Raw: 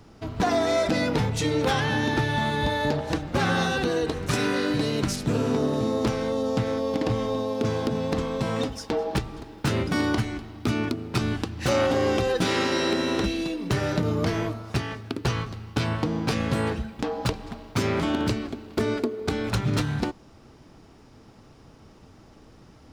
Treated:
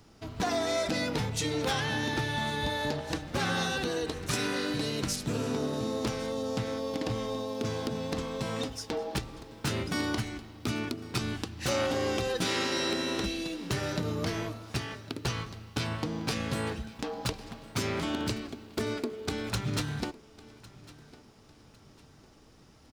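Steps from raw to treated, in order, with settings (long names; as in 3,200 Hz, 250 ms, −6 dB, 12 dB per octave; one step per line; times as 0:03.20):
high-shelf EQ 2,700 Hz +8 dB
repeating echo 1,104 ms, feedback 35%, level −20.5 dB
level −7.5 dB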